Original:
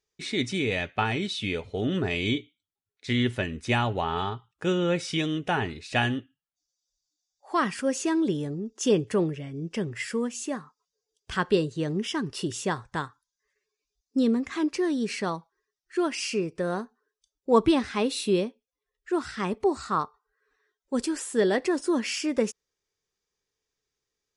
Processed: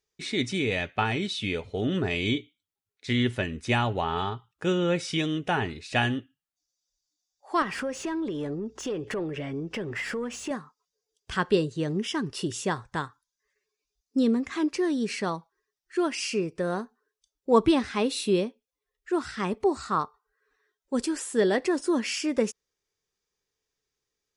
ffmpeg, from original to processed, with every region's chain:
ffmpeg -i in.wav -filter_complex "[0:a]asettb=1/sr,asplit=3[link_01][link_02][link_03];[link_01]atrim=end=7.624[link_04];[link_02]atrim=start=7.62:end=10.51,asetpts=PTS-STARTPTS,afade=type=in:duration=0.004:curve=qsin,afade=type=out:start_time=2.886:duration=0.004:curve=qsin,acompressor=threshold=-36dB:ratio=10:attack=3.2:release=140:knee=1:detection=peak,asplit=2[link_05][link_06];[link_06]highpass=frequency=720:poles=1,volume=23dB,asoftclip=type=tanh:threshold=-17.5dB[link_07];[link_05][link_07]amix=inputs=2:normalize=0,lowpass=frequency=1400:poles=1,volume=-6dB,aeval=exprs='val(0)+0.000794*(sin(2*PI*60*n/s)+sin(2*PI*2*60*n/s)/2+sin(2*PI*3*60*n/s)/3+sin(2*PI*4*60*n/s)/4+sin(2*PI*5*60*n/s)/5)':channel_layout=same[link_08];[link_03]atrim=start=10.506[link_09];[link_04][link_08]acrossfade=duration=0.004:curve1=hsin:curve2=qsin[link_10];[link_10][link_09]acrossfade=duration=0.004:curve1=qsin:curve2=hsin" out.wav

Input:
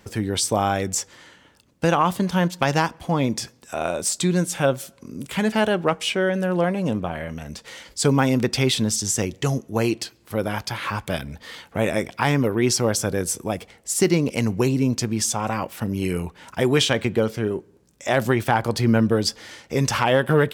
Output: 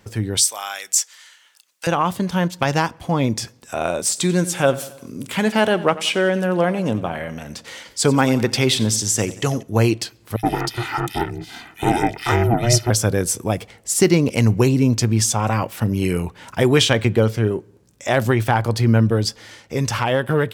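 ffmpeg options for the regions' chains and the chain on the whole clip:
ffmpeg -i in.wav -filter_complex "[0:a]asettb=1/sr,asplit=3[link_01][link_02][link_03];[link_01]atrim=end=0.374[link_04];[link_02]atrim=start=0.37:end=1.87,asetpts=PTS-STARTPTS,afade=type=in:duration=0.004:curve=qsin,afade=type=out:start_time=1.496:duration=0.004:curve=qsin,highpass=1300,highshelf=frequency=3700:gain=10.5[link_05];[link_03]atrim=start=1.866[link_06];[link_04][link_05]acrossfade=duration=0.004:curve1=hsin:curve2=qsin[link_07];[link_07][link_06]acrossfade=duration=0.004:curve1=qsin:curve2=hsin,asettb=1/sr,asplit=3[link_08][link_09][link_10];[link_08]atrim=end=4.004[link_11];[link_09]atrim=start=4:end=9.63,asetpts=PTS-STARTPTS,afade=type=in:duration=0.004:curve=qsin,afade=type=out:start_time=5.626:duration=0.004:curve=qsin,highpass=frequency=170:poles=1,aecho=1:1:91|182|273|364:0.141|0.072|0.0367|0.0187,atrim=end_sample=248283[link_12];[link_10]atrim=start=9.626[link_13];[link_11][link_12]acrossfade=duration=0.004:curve1=hsin:curve2=qsin[link_14];[link_14][link_13]acrossfade=duration=0.004:curve1=qsin:curve2=hsin,asettb=1/sr,asplit=3[link_15][link_16][link_17];[link_15]atrim=end=10.364[link_18];[link_16]atrim=start=10.36:end=12.9,asetpts=PTS-STARTPTS,afade=type=in:duration=0.004:curve=qsin,afade=type=out:start_time=2.536:duration=0.004:curve=qsin,aecho=1:1:1.8:0.93,atrim=end_sample=112014,aeval=exprs='val(0)*sin(2*PI*240*n/s)':channel_layout=same,acrossover=split=2500[link_19][link_20];[link_19]adelay=70[link_21];[link_21][link_20]amix=inputs=2:normalize=0,atrim=end_sample=112014[link_22];[link_17]atrim=start=12.896[link_23];[link_18][link_22]acrossfade=duration=0.004:curve1=hsin:curve2=qsin[link_24];[link_24][link_23]acrossfade=duration=0.004:curve1=qsin:curve2=hsin,equalizer=frequency=110:width_type=o:width=0.24:gain=8.5,dynaudnorm=framelen=240:gausssize=21:maxgain=11.5dB,volume=-1dB" out.wav

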